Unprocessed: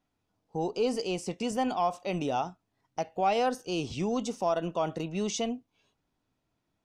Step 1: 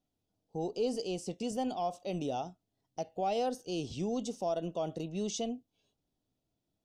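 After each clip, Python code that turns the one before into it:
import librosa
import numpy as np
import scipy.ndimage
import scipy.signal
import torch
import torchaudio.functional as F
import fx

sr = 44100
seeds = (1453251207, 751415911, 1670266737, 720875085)

y = fx.band_shelf(x, sr, hz=1500.0, db=-10.0, octaves=1.7)
y = y * librosa.db_to_amplitude(-4.0)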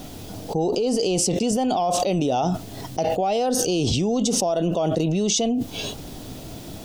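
y = fx.env_flatten(x, sr, amount_pct=100)
y = y * librosa.db_to_amplitude(7.0)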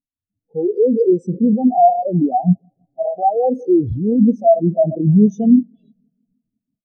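y = fx.quant_dither(x, sr, seeds[0], bits=6, dither='none')
y = fx.echo_bbd(y, sr, ms=164, stages=1024, feedback_pct=82, wet_db=-12)
y = fx.spectral_expand(y, sr, expansion=4.0)
y = y * librosa.db_to_amplitude(5.5)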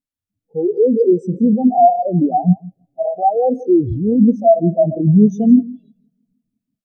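y = x + 10.0 ** (-21.5 / 20.0) * np.pad(x, (int(164 * sr / 1000.0), 0))[:len(x)]
y = y * librosa.db_to_amplitude(1.0)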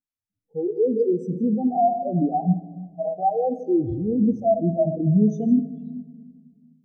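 y = fx.room_shoebox(x, sr, seeds[1], volume_m3=1600.0, walls='mixed', distance_m=0.5)
y = y * librosa.db_to_amplitude(-8.0)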